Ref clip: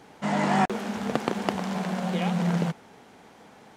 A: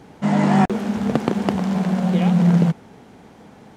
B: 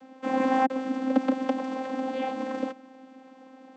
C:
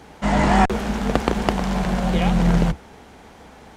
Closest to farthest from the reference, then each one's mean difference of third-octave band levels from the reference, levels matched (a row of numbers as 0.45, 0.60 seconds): C, A, B; 1.0, 5.0, 9.0 decibels